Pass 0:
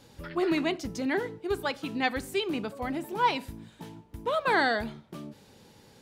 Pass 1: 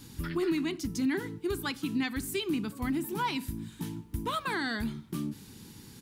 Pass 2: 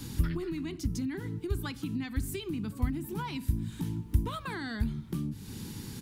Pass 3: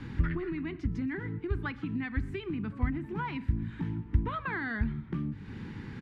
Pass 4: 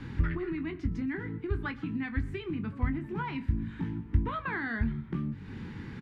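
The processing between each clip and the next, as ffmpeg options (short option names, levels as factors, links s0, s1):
-af "firequalizer=gain_entry='entry(310,0);entry(560,-21);entry(1000,-7);entry(11000,5)':delay=0.05:min_phase=1,alimiter=level_in=2:limit=0.0631:level=0:latency=1:release=470,volume=0.501,volume=2.51"
-filter_complex "[0:a]lowshelf=f=220:g=5.5,acrossover=split=130[s0][s1];[s1]acompressor=threshold=0.00708:ratio=5[s2];[s0][s2]amix=inputs=2:normalize=0,volume=2"
-af "lowpass=f=1900:t=q:w=2.2,aecho=1:1:123:0.0708"
-filter_complex "[0:a]asplit=2[s0][s1];[s1]adelay=22,volume=0.335[s2];[s0][s2]amix=inputs=2:normalize=0"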